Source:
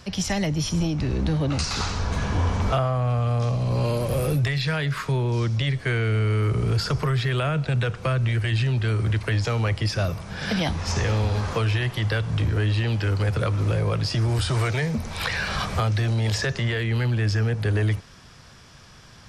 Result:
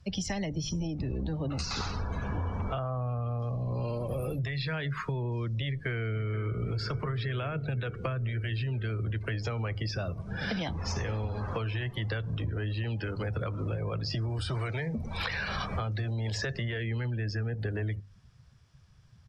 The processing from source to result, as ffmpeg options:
-filter_complex "[0:a]asplit=2[s0][s1];[s1]afade=t=in:st=5.68:d=0.01,afade=t=out:st=6.6:d=0.01,aecho=0:1:480|960|1440|1920|2400|2880|3360|3840|4320|4800|5280|5760:0.266073|0.212858|0.170286|0.136229|0.108983|0.0871866|0.0697493|0.0557994|0.0446396|0.0357116|0.0285693|0.0228555[s2];[s0][s2]amix=inputs=2:normalize=0,afftdn=nr=21:nf=-35,bandreject=f=50:t=h:w=6,bandreject=f=100:t=h:w=6,bandreject=f=150:t=h:w=6,acompressor=threshold=0.0316:ratio=6"

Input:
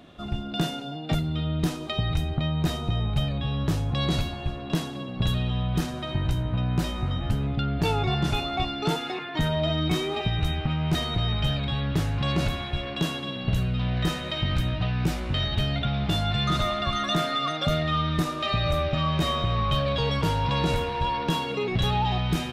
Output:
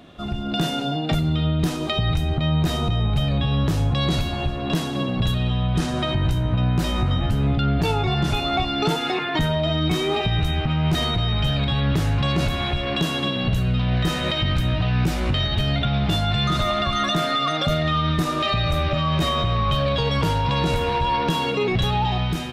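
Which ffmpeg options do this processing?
-filter_complex "[0:a]asettb=1/sr,asplit=3[s0][s1][s2];[s0]atrim=end=5.604[s3];[s1]atrim=start=5.6:end=6.16,asetpts=PTS-STARTPTS,afade=t=in:d=0.004:c=qsin,afade=t=out:st=0.556:d=0.004:c=qsin,lowpass=f=11000:w=0.5412,lowpass=f=11000:w=1.3066[s4];[s2]atrim=start=6.156[s5];[s3][s4]acrossfade=d=0.004:c1=hsin:c2=qsin[s6];[s6][s5]acrossfade=d=0.004:c1=qsin:c2=hsin,bandreject=f=294.9:t=h:w=4,bandreject=f=589.8:t=h:w=4,bandreject=f=884.7:t=h:w=4,bandreject=f=1179.6:t=h:w=4,bandreject=f=1474.5:t=h:w=4,bandreject=f=1769.4:t=h:w=4,bandreject=f=2064.3:t=h:w=4,bandreject=f=2359.2:t=h:w=4,bandreject=f=2654.1:t=h:w=4,bandreject=f=2949:t=h:w=4,bandreject=f=3243.9:t=h:w=4,bandreject=f=3538.8:t=h:w=4,bandreject=f=3833.7:t=h:w=4,bandreject=f=4128.6:t=h:w=4,bandreject=f=4423.5:t=h:w=4,bandreject=f=4718.4:t=h:w=4,bandreject=f=5013.3:t=h:w=4,bandreject=f=5308.2:t=h:w=4,bandreject=f=5603.1:t=h:w=4,bandreject=f=5898:t=h:w=4,bandreject=f=6192.9:t=h:w=4,bandreject=f=6487.8:t=h:w=4,bandreject=f=6782.7:t=h:w=4,bandreject=f=7077.6:t=h:w=4,bandreject=f=7372.5:t=h:w=4,bandreject=f=7667.4:t=h:w=4,bandreject=f=7962.3:t=h:w=4,bandreject=f=8257.2:t=h:w=4,bandreject=f=8552.1:t=h:w=4,alimiter=limit=0.0668:level=0:latency=1:release=221,dynaudnorm=f=140:g=5:m=2.24,volume=1.5"

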